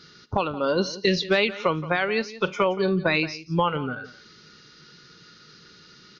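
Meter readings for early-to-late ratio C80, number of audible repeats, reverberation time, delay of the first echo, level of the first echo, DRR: no reverb audible, 1, no reverb audible, 174 ms, −16.5 dB, no reverb audible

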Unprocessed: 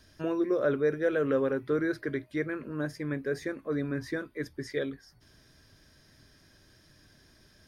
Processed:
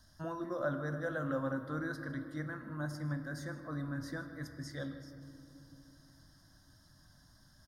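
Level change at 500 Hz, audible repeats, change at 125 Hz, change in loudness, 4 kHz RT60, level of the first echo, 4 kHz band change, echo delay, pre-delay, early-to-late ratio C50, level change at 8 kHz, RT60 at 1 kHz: −12.0 dB, 1, −0.5 dB, −8.5 dB, 1.4 s, −17.5 dB, −5.5 dB, 155 ms, 4 ms, 8.5 dB, −2.5 dB, 2.4 s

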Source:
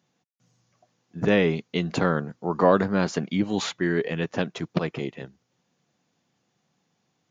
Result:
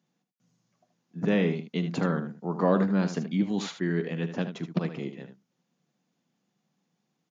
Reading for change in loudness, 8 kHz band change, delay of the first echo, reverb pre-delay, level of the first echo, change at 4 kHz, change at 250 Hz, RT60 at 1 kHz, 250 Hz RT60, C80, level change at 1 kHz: −3.5 dB, can't be measured, 41 ms, no reverb audible, −19.5 dB, −7.0 dB, −1.5 dB, no reverb audible, no reverb audible, no reverb audible, −7.0 dB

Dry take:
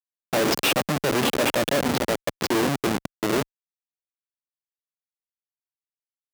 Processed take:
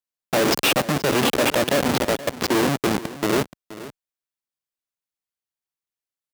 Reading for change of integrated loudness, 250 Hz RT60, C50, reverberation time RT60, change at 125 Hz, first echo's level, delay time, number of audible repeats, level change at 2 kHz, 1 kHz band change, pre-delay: +2.5 dB, no reverb audible, no reverb audible, no reverb audible, +2.5 dB, −16.0 dB, 476 ms, 1, +2.5 dB, +2.5 dB, no reverb audible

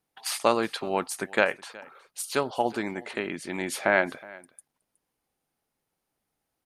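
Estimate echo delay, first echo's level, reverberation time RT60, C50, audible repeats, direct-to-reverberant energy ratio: 368 ms, −22.0 dB, no reverb audible, no reverb audible, 1, no reverb audible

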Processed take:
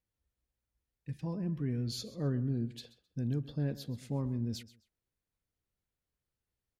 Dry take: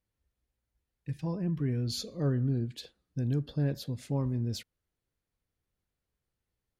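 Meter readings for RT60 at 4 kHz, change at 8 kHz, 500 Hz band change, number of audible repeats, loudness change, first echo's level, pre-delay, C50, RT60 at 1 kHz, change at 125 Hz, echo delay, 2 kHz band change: no reverb audible, −4.5 dB, −4.5 dB, 2, −3.5 dB, −17.5 dB, no reverb audible, no reverb audible, no reverb audible, −4.0 dB, 131 ms, −4.5 dB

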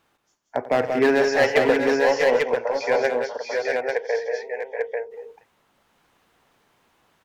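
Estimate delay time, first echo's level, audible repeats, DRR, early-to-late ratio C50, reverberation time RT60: 91 ms, −16.0 dB, 4, no reverb audible, no reverb audible, no reverb audible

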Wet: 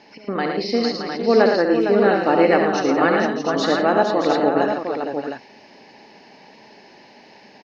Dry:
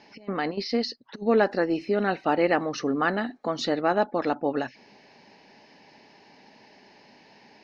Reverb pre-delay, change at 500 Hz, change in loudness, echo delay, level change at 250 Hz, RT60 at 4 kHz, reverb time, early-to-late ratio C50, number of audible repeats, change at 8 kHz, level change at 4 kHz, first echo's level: no reverb audible, +8.5 dB, +7.5 dB, 69 ms, +7.5 dB, no reverb audible, no reverb audible, no reverb audible, 6, can't be measured, +6.5 dB, −6.5 dB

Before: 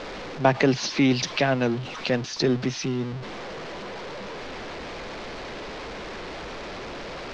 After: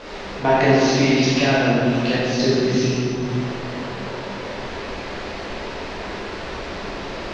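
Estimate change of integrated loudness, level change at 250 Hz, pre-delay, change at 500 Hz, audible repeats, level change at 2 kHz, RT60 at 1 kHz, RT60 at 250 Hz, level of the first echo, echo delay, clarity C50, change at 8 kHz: +6.0 dB, +6.0 dB, 10 ms, +6.5 dB, no echo audible, +6.0 dB, 2.3 s, 3.0 s, no echo audible, no echo audible, −3.5 dB, can't be measured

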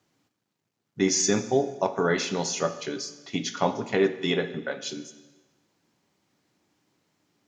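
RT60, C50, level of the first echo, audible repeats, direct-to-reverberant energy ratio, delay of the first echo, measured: 1.2 s, 13.0 dB, no echo audible, no echo audible, 10.0 dB, no echo audible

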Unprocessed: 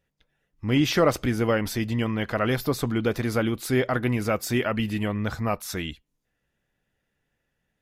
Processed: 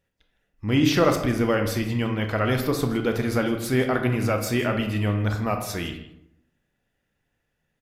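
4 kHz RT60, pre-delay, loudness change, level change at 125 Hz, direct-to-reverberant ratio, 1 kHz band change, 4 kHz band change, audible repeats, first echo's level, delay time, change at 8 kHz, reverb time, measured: 0.45 s, 24 ms, +1.5 dB, +2.5 dB, 4.5 dB, +1.5 dB, +1.0 dB, 1, −17.5 dB, 160 ms, +0.5 dB, 0.80 s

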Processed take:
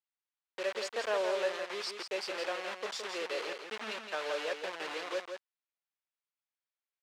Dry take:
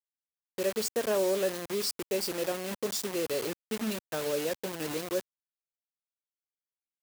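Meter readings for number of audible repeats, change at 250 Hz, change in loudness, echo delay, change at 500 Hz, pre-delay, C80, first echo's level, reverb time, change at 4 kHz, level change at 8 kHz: 1, −13.0 dB, −4.5 dB, 167 ms, −5.0 dB, no reverb audible, no reverb audible, −6.5 dB, no reverb audible, −2.0 dB, −11.5 dB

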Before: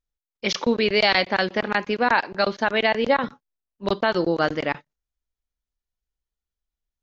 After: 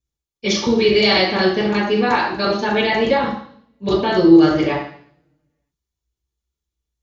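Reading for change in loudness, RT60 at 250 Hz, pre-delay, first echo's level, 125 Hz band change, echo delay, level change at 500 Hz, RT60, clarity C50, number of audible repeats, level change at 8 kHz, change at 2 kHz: +5.5 dB, 0.65 s, 3 ms, no echo audible, +8.5 dB, no echo audible, +6.0 dB, 0.60 s, 3.5 dB, no echo audible, can't be measured, +1.5 dB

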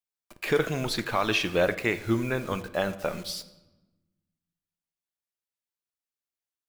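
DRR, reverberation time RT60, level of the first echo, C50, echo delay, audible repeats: 12.0 dB, 1.1 s, no echo audible, 15.0 dB, no echo audible, no echo audible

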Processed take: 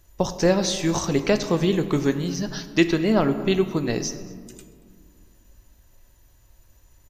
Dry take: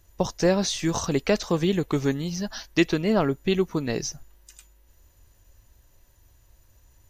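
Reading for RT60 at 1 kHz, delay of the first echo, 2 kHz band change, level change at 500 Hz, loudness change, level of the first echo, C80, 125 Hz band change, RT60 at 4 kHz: 1.9 s, 232 ms, +2.0 dB, +2.5 dB, +2.5 dB, −22.5 dB, 12.0 dB, +2.0 dB, 0.90 s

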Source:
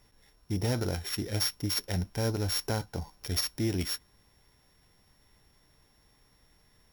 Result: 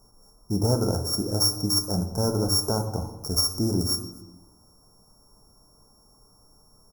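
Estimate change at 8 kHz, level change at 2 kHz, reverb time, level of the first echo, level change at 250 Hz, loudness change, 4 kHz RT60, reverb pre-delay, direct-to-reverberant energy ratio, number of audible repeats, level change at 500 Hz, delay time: +8.5 dB, −10.0 dB, 1.0 s, −21.5 dB, +7.0 dB, +7.0 dB, 0.75 s, 4 ms, 6.0 dB, 1, +7.0 dB, 253 ms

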